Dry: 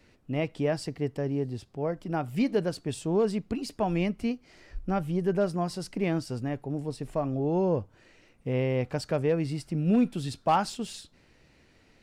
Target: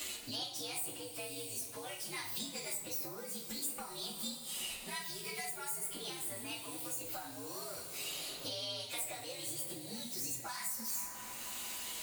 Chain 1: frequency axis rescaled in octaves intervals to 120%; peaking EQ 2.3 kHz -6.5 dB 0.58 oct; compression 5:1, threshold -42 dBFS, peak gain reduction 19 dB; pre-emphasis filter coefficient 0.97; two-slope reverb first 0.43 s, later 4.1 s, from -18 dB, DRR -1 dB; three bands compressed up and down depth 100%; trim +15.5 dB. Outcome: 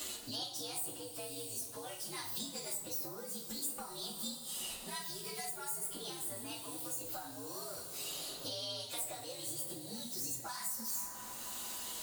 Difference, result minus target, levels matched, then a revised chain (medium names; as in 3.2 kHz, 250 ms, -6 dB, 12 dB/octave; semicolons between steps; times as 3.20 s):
2 kHz band -5.0 dB
frequency axis rescaled in octaves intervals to 120%; peaking EQ 2.3 kHz +3 dB 0.58 oct; compression 5:1, threshold -42 dBFS, peak gain reduction 19 dB; pre-emphasis filter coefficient 0.97; two-slope reverb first 0.43 s, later 4.1 s, from -18 dB, DRR -1 dB; three bands compressed up and down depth 100%; trim +15.5 dB